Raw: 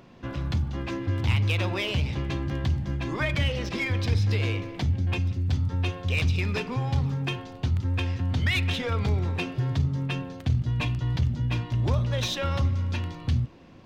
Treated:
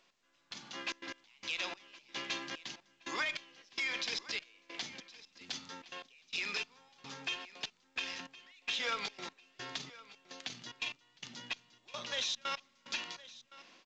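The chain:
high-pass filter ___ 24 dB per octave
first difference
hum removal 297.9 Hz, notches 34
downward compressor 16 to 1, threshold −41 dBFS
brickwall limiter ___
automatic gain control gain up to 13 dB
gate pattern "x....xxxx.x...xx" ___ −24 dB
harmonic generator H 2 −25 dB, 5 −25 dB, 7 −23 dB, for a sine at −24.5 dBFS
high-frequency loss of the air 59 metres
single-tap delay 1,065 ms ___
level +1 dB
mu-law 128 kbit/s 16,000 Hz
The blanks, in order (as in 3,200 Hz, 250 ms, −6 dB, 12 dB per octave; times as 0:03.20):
180 Hz, −38 dBFS, 147 BPM, −18.5 dB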